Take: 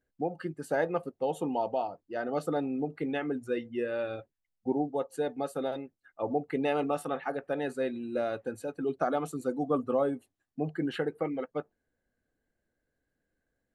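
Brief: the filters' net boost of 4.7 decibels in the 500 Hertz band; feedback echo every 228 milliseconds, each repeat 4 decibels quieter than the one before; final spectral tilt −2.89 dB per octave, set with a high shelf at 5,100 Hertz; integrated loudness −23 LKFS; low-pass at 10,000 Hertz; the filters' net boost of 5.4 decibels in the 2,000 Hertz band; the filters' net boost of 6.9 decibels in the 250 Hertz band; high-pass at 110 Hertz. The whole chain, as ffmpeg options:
ffmpeg -i in.wav -af "highpass=110,lowpass=10000,equalizer=frequency=250:width_type=o:gain=7,equalizer=frequency=500:width_type=o:gain=3.5,equalizer=frequency=2000:width_type=o:gain=8,highshelf=frequency=5100:gain=-7.5,aecho=1:1:228|456|684|912|1140|1368|1596|1824|2052:0.631|0.398|0.25|0.158|0.0994|0.0626|0.0394|0.0249|0.0157,volume=2.5dB" out.wav

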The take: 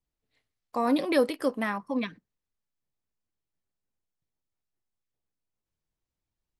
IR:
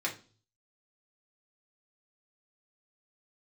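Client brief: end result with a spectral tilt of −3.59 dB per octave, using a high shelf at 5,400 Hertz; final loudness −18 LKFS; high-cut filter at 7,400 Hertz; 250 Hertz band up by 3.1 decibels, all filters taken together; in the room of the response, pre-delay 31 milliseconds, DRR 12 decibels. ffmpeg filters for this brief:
-filter_complex "[0:a]lowpass=7400,equalizer=frequency=250:width_type=o:gain=3.5,highshelf=frequency=5400:gain=4.5,asplit=2[link_01][link_02];[1:a]atrim=start_sample=2205,adelay=31[link_03];[link_02][link_03]afir=irnorm=-1:irlink=0,volume=-17.5dB[link_04];[link_01][link_04]amix=inputs=2:normalize=0,volume=8.5dB"

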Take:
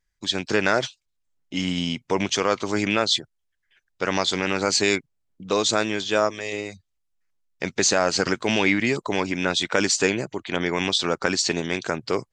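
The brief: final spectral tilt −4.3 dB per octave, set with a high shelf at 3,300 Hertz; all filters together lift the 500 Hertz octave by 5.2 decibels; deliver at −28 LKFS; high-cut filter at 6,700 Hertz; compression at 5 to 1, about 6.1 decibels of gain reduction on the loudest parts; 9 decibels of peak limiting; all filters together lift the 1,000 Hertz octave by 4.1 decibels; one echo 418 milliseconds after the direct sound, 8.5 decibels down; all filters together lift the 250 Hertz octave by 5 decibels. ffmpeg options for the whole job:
ffmpeg -i in.wav -af "lowpass=6700,equalizer=frequency=250:width_type=o:gain=5,equalizer=frequency=500:width_type=o:gain=4,equalizer=frequency=1000:width_type=o:gain=4.5,highshelf=frequency=3300:gain=-4.5,acompressor=threshold=-18dB:ratio=5,alimiter=limit=-12dB:level=0:latency=1,aecho=1:1:418:0.376,volume=-2.5dB" out.wav

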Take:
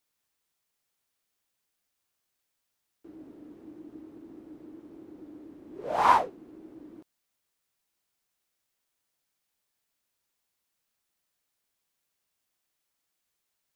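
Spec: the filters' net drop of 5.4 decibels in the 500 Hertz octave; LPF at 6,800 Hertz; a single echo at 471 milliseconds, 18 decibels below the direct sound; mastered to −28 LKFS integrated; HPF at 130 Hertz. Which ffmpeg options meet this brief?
ffmpeg -i in.wav -af "highpass=130,lowpass=6800,equalizer=frequency=500:width_type=o:gain=-7.5,aecho=1:1:471:0.126,volume=0.5dB" out.wav

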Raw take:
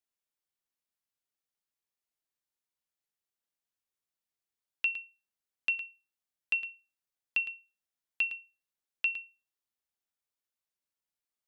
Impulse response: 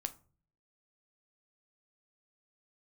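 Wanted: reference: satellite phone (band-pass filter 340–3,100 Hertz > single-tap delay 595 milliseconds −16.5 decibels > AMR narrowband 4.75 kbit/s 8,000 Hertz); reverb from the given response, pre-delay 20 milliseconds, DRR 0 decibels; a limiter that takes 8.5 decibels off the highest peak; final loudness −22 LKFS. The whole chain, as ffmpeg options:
-filter_complex "[0:a]alimiter=level_in=4dB:limit=-24dB:level=0:latency=1,volume=-4dB,asplit=2[link_01][link_02];[1:a]atrim=start_sample=2205,adelay=20[link_03];[link_02][link_03]afir=irnorm=-1:irlink=0,volume=1dB[link_04];[link_01][link_04]amix=inputs=2:normalize=0,highpass=340,lowpass=3100,aecho=1:1:595:0.15,volume=20dB" -ar 8000 -c:a libopencore_amrnb -b:a 4750

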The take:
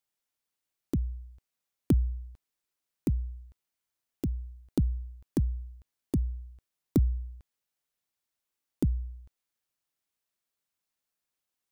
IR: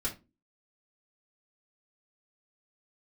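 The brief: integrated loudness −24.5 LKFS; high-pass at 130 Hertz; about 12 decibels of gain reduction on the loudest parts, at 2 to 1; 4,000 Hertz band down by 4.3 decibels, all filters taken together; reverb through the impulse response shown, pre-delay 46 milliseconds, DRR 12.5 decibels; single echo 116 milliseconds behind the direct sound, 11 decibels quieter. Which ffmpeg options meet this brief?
-filter_complex "[0:a]highpass=130,equalizer=frequency=4000:width_type=o:gain=-5.5,acompressor=threshold=-43dB:ratio=2,aecho=1:1:116:0.282,asplit=2[link_01][link_02];[1:a]atrim=start_sample=2205,adelay=46[link_03];[link_02][link_03]afir=irnorm=-1:irlink=0,volume=-16dB[link_04];[link_01][link_04]amix=inputs=2:normalize=0,volume=21dB"

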